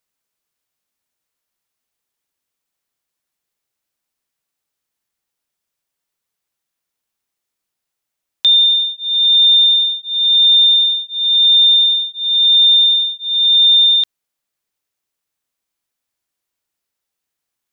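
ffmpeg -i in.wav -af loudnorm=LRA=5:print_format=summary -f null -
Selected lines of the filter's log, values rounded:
Input Integrated:     -9.2 LUFS
Input True Peak:      -6.2 dBTP
Input LRA:             7.8 LU
Input Threshold:     -19.3 LUFS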